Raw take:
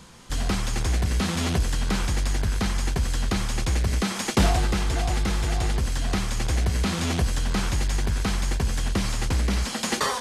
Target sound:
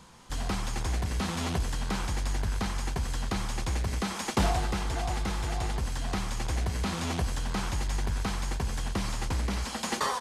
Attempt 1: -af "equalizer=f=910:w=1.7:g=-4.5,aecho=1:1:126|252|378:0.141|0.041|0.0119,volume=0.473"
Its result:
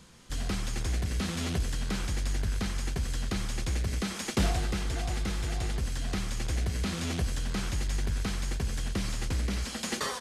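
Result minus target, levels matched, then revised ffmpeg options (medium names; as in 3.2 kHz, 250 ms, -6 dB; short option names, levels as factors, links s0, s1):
1 kHz band -6.5 dB
-af "equalizer=f=910:w=1.7:g=5.5,aecho=1:1:126|252|378:0.141|0.041|0.0119,volume=0.473"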